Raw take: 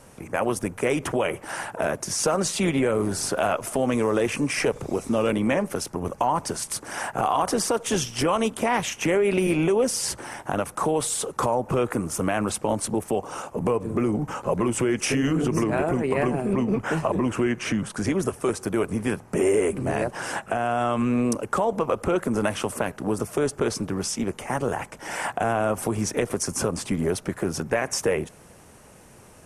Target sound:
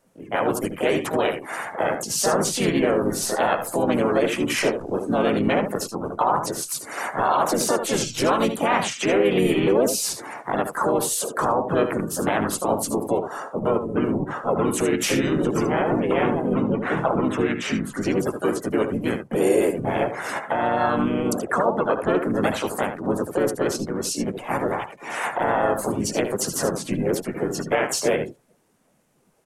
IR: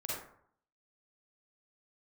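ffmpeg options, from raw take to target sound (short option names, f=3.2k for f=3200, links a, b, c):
-filter_complex "[0:a]equalizer=f=64:t=o:w=1.5:g=-11.5,aecho=1:1:76:0.422,afftdn=nr=19:nf=-37,lowshelf=f=110:g=-2,asplit=4[a][b][c][d];[b]asetrate=22050,aresample=44100,atempo=2,volume=-16dB[e];[c]asetrate=35002,aresample=44100,atempo=1.25992,volume=-6dB[f];[d]asetrate=55563,aresample=44100,atempo=0.793701,volume=-3dB[g];[a][e][f][g]amix=inputs=4:normalize=0"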